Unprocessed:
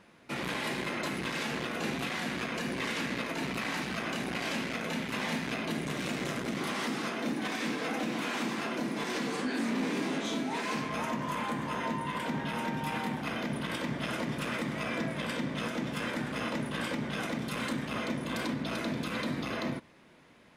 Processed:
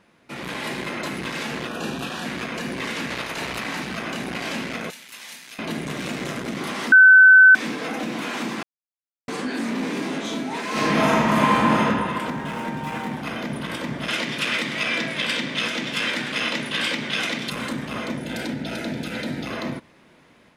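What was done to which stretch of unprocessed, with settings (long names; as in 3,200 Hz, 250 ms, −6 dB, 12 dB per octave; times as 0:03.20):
0:01.68–0:02.25: Butterworth band-reject 2,100 Hz, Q 3.9
0:03.09–0:03.59: ceiling on every frequency bin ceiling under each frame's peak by 13 dB
0:04.90–0:05.59: first-order pre-emphasis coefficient 0.97
0:06.92–0:07.55: beep over 1,520 Hz −11.5 dBFS
0:08.63–0:09.28: silence
0:10.71–0:11.79: thrown reverb, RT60 2 s, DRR −10.5 dB
0:12.30–0:13.12: running median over 9 samples
0:14.08–0:17.50: meter weighting curve D
0:18.19–0:19.47: Butterworth band-reject 1,100 Hz, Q 3.3
whole clip: automatic gain control gain up to 5 dB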